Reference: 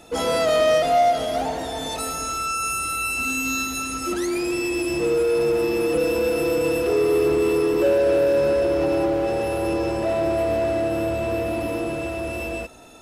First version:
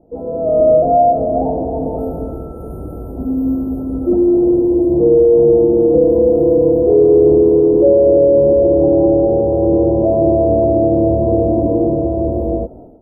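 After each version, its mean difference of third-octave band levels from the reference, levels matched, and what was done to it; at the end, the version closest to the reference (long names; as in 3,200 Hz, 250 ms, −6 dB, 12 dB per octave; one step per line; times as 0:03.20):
14.5 dB: inverse Chebyshev band-stop filter 2,200–4,700 Hz, stop band 80 dB
high-frequency loss of the air 310 metres
automatic gain control gain up to 14.5 dB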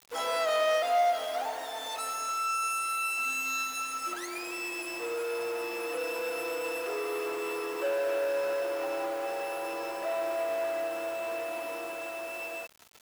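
8.0 dB: high-pass filter 980 Hz 12 dB per octave
high-shelf EQ 2,100 Hz −9.5 dB
bit-depth reduction 8 bits, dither none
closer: second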